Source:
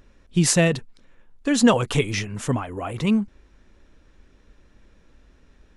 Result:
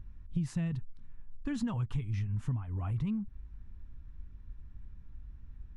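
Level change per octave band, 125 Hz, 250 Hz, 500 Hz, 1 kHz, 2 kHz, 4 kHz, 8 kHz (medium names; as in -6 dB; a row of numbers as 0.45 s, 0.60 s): -7.0 dB, -14.5 dB, -28.0 dB, -21.0 dB, -23.5 dB, under -25 dB, under -25 dB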